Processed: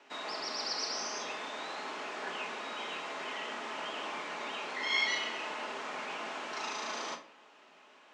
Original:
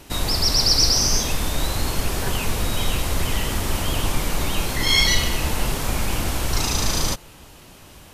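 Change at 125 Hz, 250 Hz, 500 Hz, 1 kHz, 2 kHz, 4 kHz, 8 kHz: -39.5, -19.5, -11.5, -8.0, -8.0, -16.0, -21.0 dB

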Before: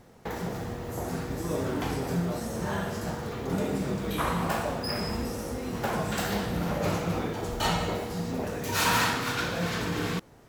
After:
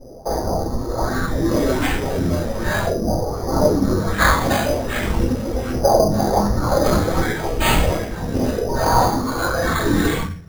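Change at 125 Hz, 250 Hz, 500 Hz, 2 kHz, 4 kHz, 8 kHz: +9.5, +10.0, +12.5, +9.0, +5.5, +7.5 dB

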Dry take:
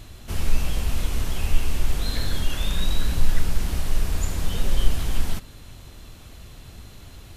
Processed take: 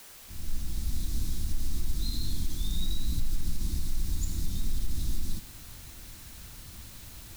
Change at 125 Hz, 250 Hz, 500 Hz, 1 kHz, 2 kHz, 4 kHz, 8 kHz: -7.0, -6.5, -17.0, -17.0, -15.5, -8.0, -4.5 dB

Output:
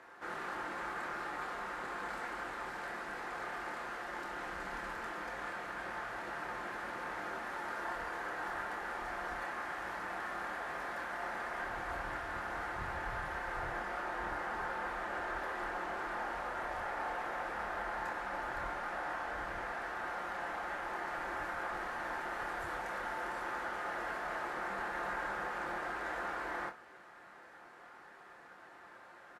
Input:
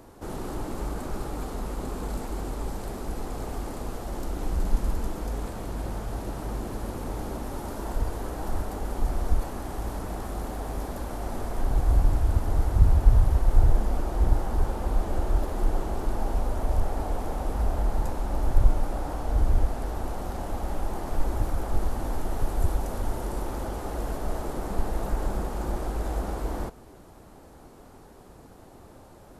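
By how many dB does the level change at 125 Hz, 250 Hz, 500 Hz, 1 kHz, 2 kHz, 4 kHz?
-27.0, -14.5, -8.5, -1.5, +8.0, -4.0 dB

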